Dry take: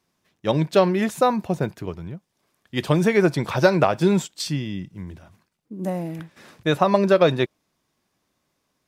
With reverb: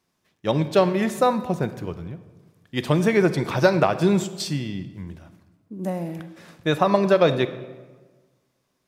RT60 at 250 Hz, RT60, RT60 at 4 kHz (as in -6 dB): 1.5 s, 1.4 s, 0.90 s